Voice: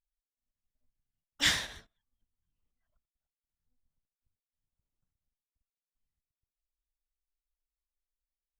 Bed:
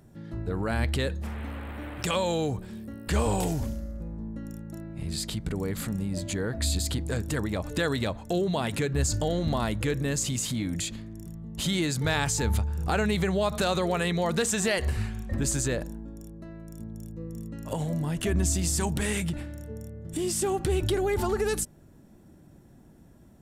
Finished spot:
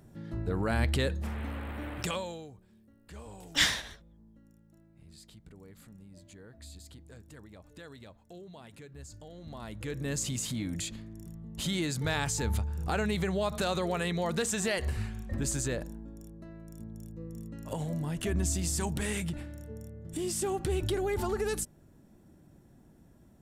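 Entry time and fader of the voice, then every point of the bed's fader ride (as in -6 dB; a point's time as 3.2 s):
2.15 s, +1.5 dB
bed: 1.98 s -1 dB
2.53 s -21.5 dB
9.31 s -21.5 dB
10.13 s -4.5 dB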